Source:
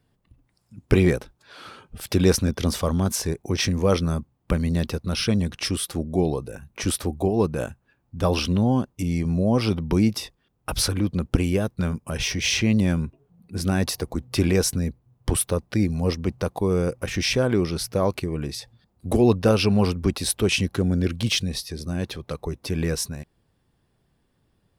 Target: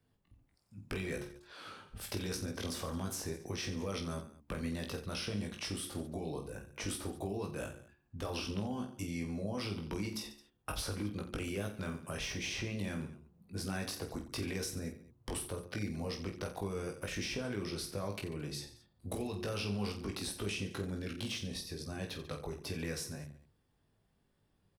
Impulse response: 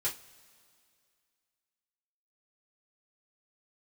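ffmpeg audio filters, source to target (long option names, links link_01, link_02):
-filter_complex "[0:a]bandreject=frequency=71.44:width_type=h:width=4,bandreject=frequency=142.88:width_type=h:width=4,bandreject=frequency=214.32:width_type=h:width=4,bandreject=frequency=285.76:width_type=h:width=4,bandreject=frequency=357.2:width_type=h:width=4,alimiter=limit=-14dB:level=0:latency=1:release=21,acrossover=split=250|1400[link_01][link_02][link_03];[link_01]acompressor=threshold=-35dB:ratio=4[link_04];[link_02]acompressor=threshold=-33dB:ratio=4[link_05];[link_03]acompressor=threshold=-33dB:ratio=4[link_06];[link_04][link_05][link_06]amix=inputs=3:normalize=0,aecho=1:1:20|48|87.2|142.1|218.9:0.631|0.398|0.251|0.158|0.1,volume=-9dB"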